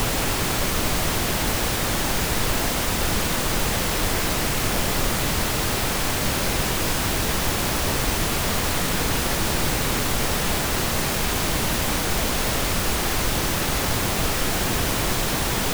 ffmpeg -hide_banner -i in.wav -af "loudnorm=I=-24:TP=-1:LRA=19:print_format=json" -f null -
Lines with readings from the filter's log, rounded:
"input_i" : "-22.4",
"input_tp" : "-9.0",
"input_lra" : "0.1",
"input_thresh" : "-32.4",